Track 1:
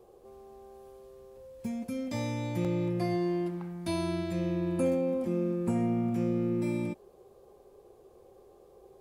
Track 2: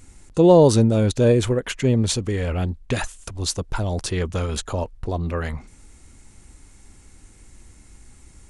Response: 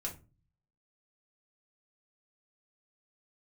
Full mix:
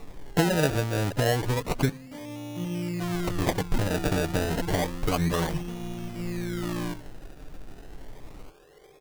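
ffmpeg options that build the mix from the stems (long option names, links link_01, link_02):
-filter_complex "[0:a]highshelf=frequency=5300:gain=8,volume=0dB,asplit=2[link_01][link_02];[link_02]volume=-10.5dB[link_03];[1:a]acompressor=threshold=-24dB:ratio=16,volume=1.5dB,asplit=3[link_04][link_05][link_06];[link_04]atrim=end=1.89,asetpts=PTS-STARTPTS,afade=type=out:start_time=1.886:duration=0.004:curve=hsin[link_07];[link_05]atrim=start=1.89:end=3.14,asetpts=PTS-STARTPTS,volume=0[link_08];[link_06]atrim=start=3.14,asetpts=PTS-STARTPTS,afade=type=in:duration=0.004:curve=hsin[link_09];[link_07][link_08][link_09]concat=n=3:v=0:a=1,asplit=3[link_10][link_11][link_12];[link_11]volume=-17.5dB[link_13];[link_12]apad=whole_len=397173[link_14];[link_01][link_14]sidechaincompress=threshold=-42dB:ratio=8:attack=16:release=1090[link_15];[2:a]atrim=start_sample=2205[link_16];[link_03][link_13]amix=inputs=2:normalize=0[link_17];[link_17][link_16]afir=irnorm=-1:irlink=0[link_18];[link_15][link_10][link_18]amix=inputs=3:normalize=0,aecho=1:1:6.7:0.69,acrusher=samples=28:mix=1:aa=0.000001:lfo=1:lforange=28:lforate=0.3"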